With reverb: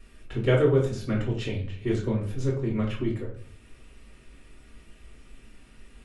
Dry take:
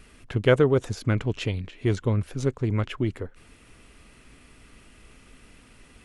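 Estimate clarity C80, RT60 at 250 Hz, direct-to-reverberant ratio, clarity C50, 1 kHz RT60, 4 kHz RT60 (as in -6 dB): 11.0 dB, 0.60 s, -4.0 dB, 7.0 dB, 0.40 s, 0.35 s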